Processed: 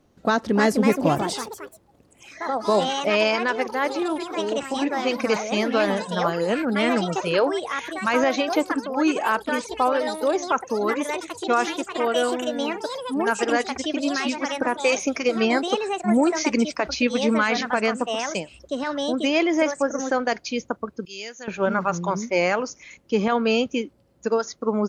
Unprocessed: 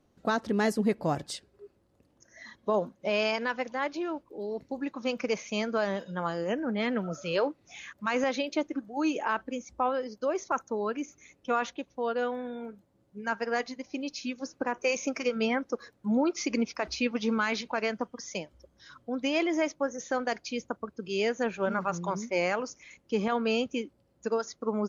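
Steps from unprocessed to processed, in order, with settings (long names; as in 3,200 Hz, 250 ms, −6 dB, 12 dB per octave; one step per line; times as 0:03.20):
delay with pitch and tempo change per echo 359 ms, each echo +4 semitones, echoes 3, each echo −6 dB
0:21.05–0:21.48: first-order pre-emphasis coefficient 0.9
level +7 dB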